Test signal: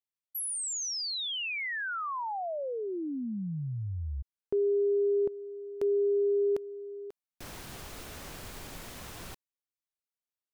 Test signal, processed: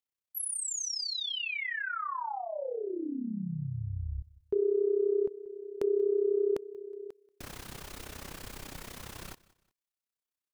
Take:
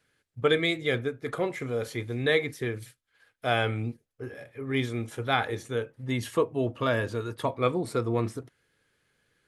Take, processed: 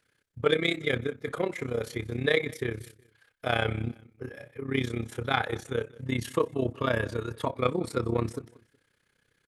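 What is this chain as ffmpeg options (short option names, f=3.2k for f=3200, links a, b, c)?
-filter_complex "[0:a]equalizer=f=690:w=5.2:g=-3,acontrast=53,tremolo=f=32:d=0.824,asplit=2[a][b];[b]aecho=0:1:184|368:0.0794|0.0262[c];[a][c]amix=inputs=2:normalize=0,volume=-3dB"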